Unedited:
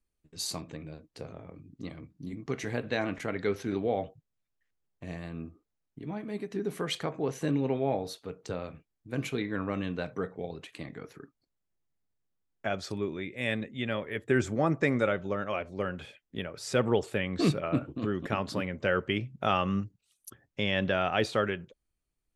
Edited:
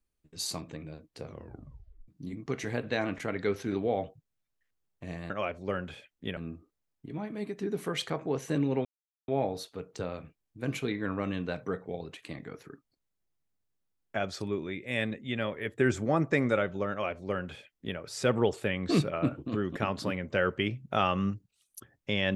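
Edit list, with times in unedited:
1.25 tape stop 0.83 s
7.78 insert silence 0.43 s
15.41–16.48 copy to 5.3

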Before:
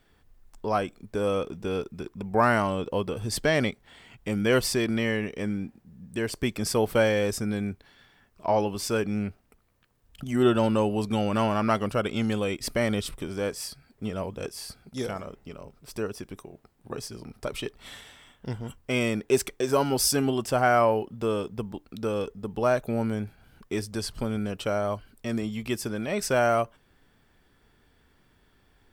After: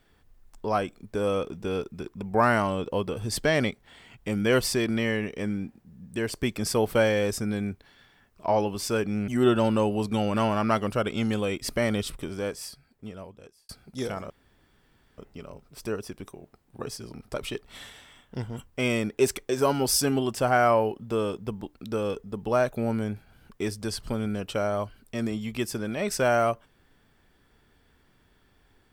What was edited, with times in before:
9.28–10.27 cut
13.18–14.68 fade out
15.29 insert room tone 0.88 s

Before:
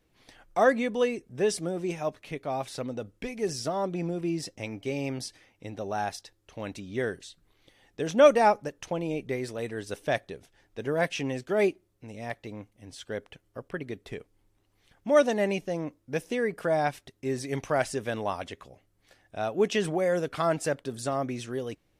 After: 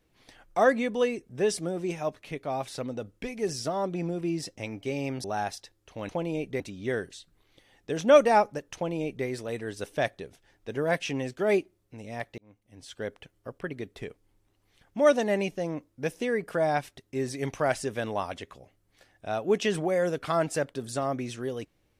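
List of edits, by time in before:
5.24–5.85 cut
8.85–9.36 copy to 6.7
12.48–13.08 fade in

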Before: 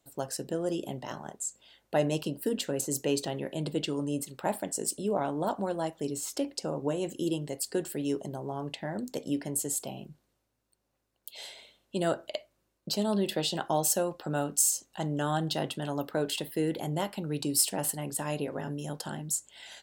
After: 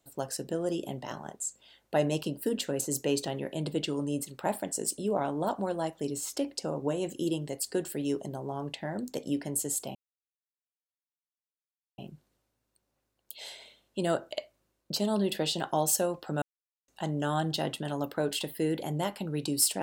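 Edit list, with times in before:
9.95 insert silence 2.03 s
14.39–14.85 mute

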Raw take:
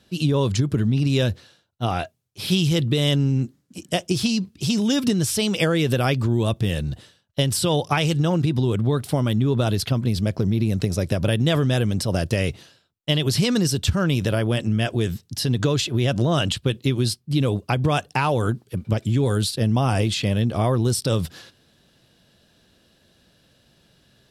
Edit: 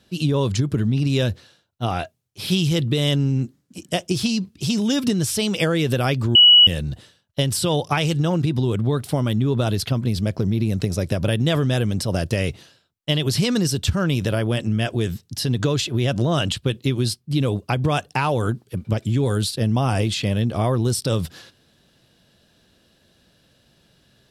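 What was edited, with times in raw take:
6.35–6.67 bleep 2930 Hz -7 dBFS

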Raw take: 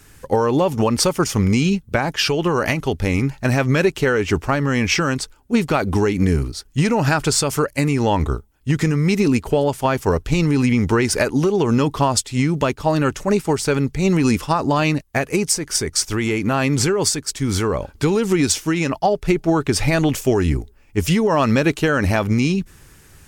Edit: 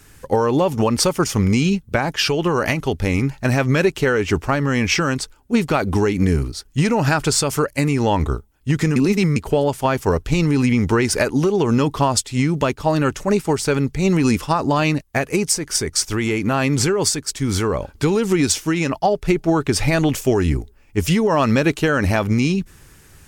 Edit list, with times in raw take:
8.96–9.36 reverse

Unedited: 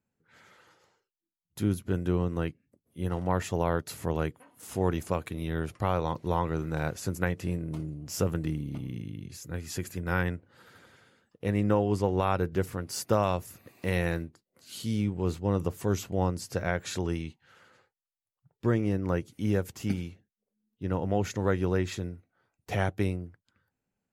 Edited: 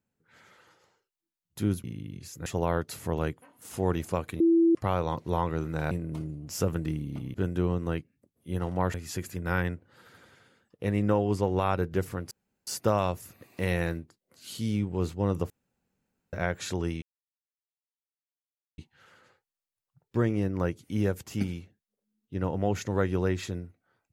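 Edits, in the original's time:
1.84–3.44 swap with 8.93–9.55
5.38–5.73 bleep 333 Hz -17.5 dBFS
6.89–7.5 cut
12.92 insert room tone 0.36 s
15.75–16.58 room tone
17.27 insert silence 1.76 s

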